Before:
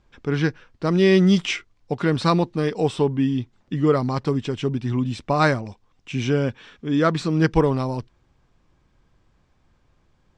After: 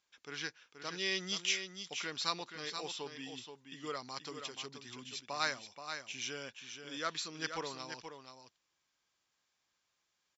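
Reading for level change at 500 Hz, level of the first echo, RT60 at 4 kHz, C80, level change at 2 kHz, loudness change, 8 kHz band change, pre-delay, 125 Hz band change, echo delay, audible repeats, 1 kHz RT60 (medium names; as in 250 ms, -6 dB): -23.0 dB, -8.0 dB, no reverb, no reverb, -11.0 dB, -17.5 dB, -1.5 dB, no reverb, -32.5 dB, 478 ms, 1, no reverb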